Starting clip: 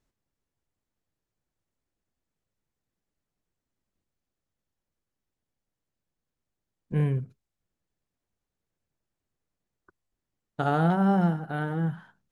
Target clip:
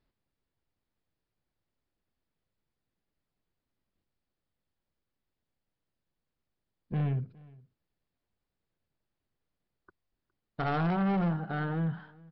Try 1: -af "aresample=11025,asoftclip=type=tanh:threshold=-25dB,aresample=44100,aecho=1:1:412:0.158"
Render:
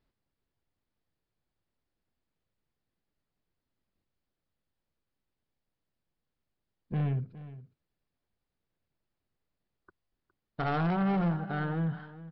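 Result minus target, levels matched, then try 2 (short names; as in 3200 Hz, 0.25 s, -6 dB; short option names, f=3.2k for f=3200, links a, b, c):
echo-to-direct +8 dB
-af "aresample=11025,asoftclip=type=tanh:threshold=-25dB,aresample=44100,aecho=1:1:412:0.0631"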